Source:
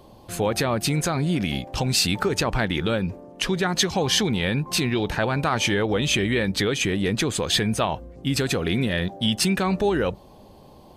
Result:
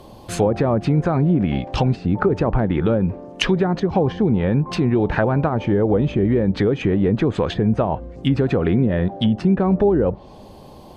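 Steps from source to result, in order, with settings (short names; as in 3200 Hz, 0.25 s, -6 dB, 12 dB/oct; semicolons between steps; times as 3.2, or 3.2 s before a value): treble ducked by the level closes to 610 Hz, closed at -18 dBFS; gain +6.5 dB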